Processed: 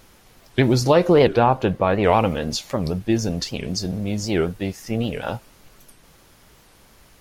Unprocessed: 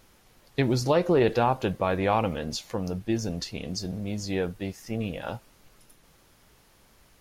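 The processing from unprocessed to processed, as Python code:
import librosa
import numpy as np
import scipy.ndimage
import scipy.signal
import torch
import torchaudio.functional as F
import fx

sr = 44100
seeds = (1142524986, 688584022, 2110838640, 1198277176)

y = fx.high_shelf(x, sr, hz=4100.0, db=-10.0, at=(1.28, 2.05))
y = fx.record_warp(y, sr, rpm=78.0, depth_cents=250.0)
y = F.gain(torch.from_numpy(y), 7.0).numpy()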